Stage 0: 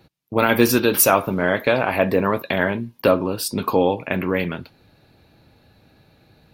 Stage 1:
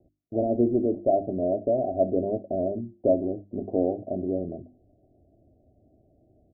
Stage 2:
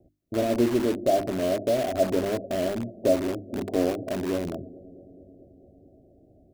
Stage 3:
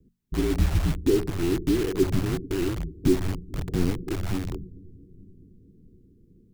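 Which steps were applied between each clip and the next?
Chebyshev low-pass 750 Hz, order 8; hum notches 50/100/150/200/250/300/350 Hz; comb 3.1 ms, depth 55%; trim -5 dB
feedback echo behind a low-pass 219 ms, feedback 76%, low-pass 510 Hz, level -21.5 dB; in parallel at -7 dB: integer overflow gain 26.5 dB
frequency shift -280 Hz; trim +1 dB

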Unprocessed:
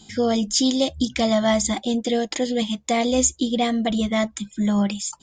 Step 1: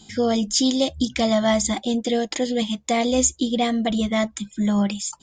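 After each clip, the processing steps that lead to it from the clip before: no audible change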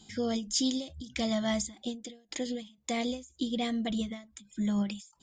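dynamic bell 830 Hz, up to -6 dB, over -35 dBFS, Q 0.79; endings held to a fixed fall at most 150 dB/s; trim -8 dB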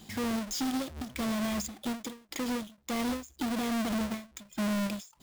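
square wave that keeps the level; peak limiter -28 dBFS, peak gain reduction 11 dB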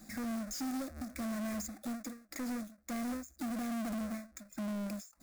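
static phaser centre 620 Hz, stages 8; saturation -34.5 dBFS, distortion -11 dB

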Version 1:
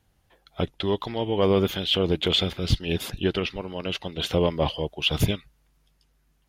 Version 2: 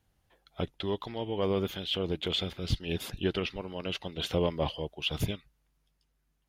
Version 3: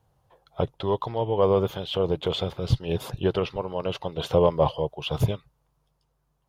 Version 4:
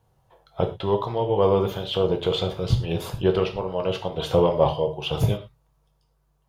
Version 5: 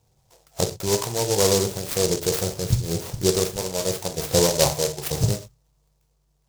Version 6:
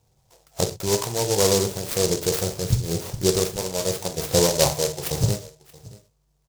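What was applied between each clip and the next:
gain riding 2 s; trim -7.5 dB
ten-band graphic EQ 125 Hz +12 dB, 250 Hz -4 dB, 500 Hz +9 dB, 1 kHz +11 dB, 2 kHz -5 dB
gated-style reverb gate 140 ms falling, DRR 3.5 dB; trim +1 dB
delay time shaken by noise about 5.7 kHz, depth 0.18 ms
delay 627 ms -21.5 dB

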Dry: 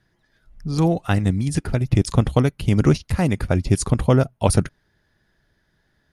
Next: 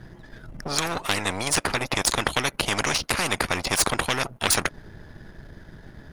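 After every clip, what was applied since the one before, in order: partial rectifier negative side -7 dB; tilt shelf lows +6 dB, about 1.2 kHz; spectrum-flattening compressor 10:1; trim -1 dB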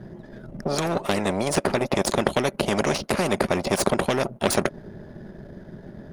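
small resonant body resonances 210/380/560 Hz, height 15 dB, ringing for 25 ms; trim -6 dB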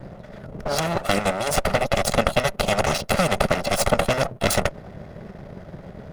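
comb filter that takes the minimum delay 1.5 ms; trim +4.5 dB

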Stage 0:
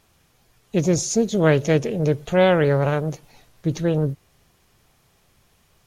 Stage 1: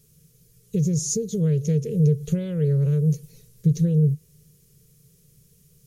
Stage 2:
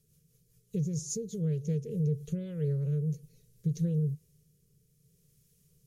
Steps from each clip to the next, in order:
compression 12:1, threshold -24 dBFS, peak gain reduction 13.5 dB; FFT filter 100 Hz 0 dB, 150 Hz +14 dB, 300 Hz -12 dB, 450 Hz +5 dB, 760 Hz -29 dB, 1.1 kHz -18 dB, 3.6 kHz -7 dB, 6.2 kHz +3 dB, 11 kHz +8 dB
rotary cabinet horn 5 Hz, later 0.65 Hz, at 1.84 s; trim -8.5 dB

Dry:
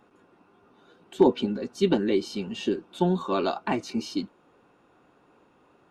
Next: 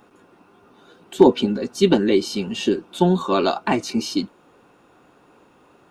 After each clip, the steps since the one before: treble shelf 5.9 kHz +7.5 dB; trim +6.5 dB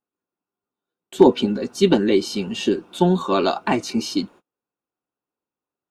gate -41 dBFS, range -37 dB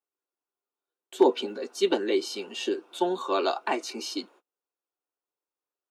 high-pass 340 Hz 24 dB/octave; trim -5.5 dB

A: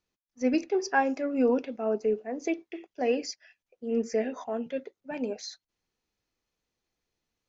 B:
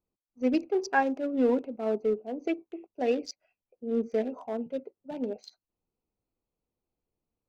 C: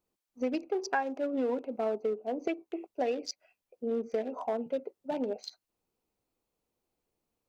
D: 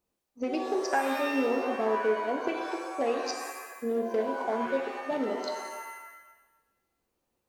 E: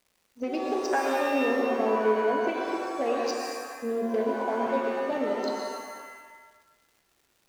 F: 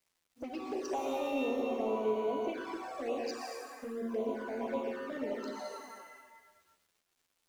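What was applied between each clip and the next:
local Wiener filter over 25 samples
bass shelf 240 Hz -9 dB; compression 5:1, threshold -37 dBFS, peak gain reduction 15.5 dB; dynamic bell 790 Hz, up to +3 dB, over -50 dBFS, Q 0.88; trim +6.5 dB
pitch-shifted reverb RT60 1.1 s, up +7 st, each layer -2 dB, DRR 3.5 dB; trim +1 dB
median filter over 3 samples; crackle 310 per s -53 dBFS; on a send at -2 dB: reverberation RT60 1.3 s, pre-delay 110 ms
in parallel at -8.5 dB: saturation -28 dBFS, distortion -9 dB; on the sum: bit crusher 10-bit; touch-sensitive flanger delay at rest 11.9 ms, full sweep at -21.5 dBFS; trim -8 dB

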